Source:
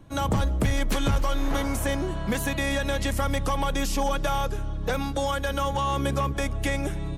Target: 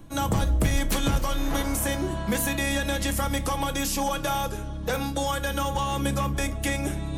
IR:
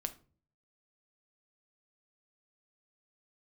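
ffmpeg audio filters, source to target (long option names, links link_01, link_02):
-filter_complex "[0:a]highshelf=frequency=6500:gain=9.5,areverse,acompressor=mode=upward:threshold=-25dB:ratio=2.5,areverse[link_01];[1:a]atrim=start_sample=2205[link_02];[link_01][link_02]afir=irnorm=-1:irlink=0"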